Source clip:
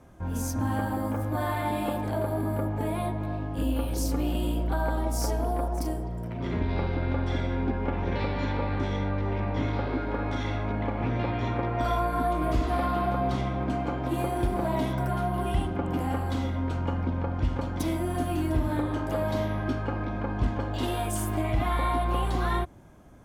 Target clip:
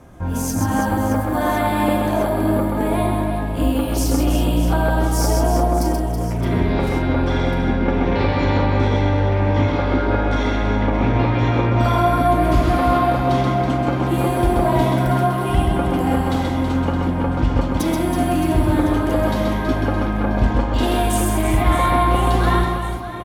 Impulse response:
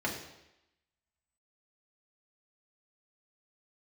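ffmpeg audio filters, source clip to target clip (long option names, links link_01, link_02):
-af "aecho=1:1:130|325|617.5|1056|1714:0.631|0.398|0.251|0.158|0.1,volume=8.5dB"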